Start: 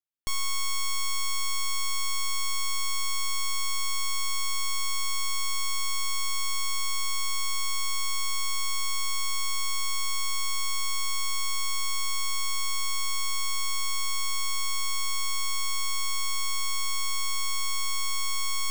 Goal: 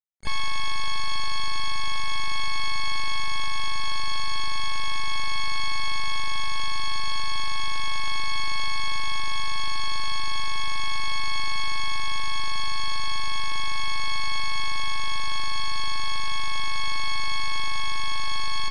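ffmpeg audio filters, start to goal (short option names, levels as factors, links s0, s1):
-filter_complex "[0:a]aresample=11025,acrusher=bits=5:mix=0:aa=0.000001,aresample=44100,asplit=4[s0][s1][s2][s3];[s1]asetrate=35002,aresample=44100,atempo=1.25992,volume=0.282[s4];[s2]asetrate=66075,aresample=44100,atempo=0.66742,volume=0.224[s5];[s3]asetrate=88200,aresample=44100,atempo=0.5,volume=0.2[s6];[s0][s4][s5][s6]amix=inputs=4:normalize=0,volume=1.26"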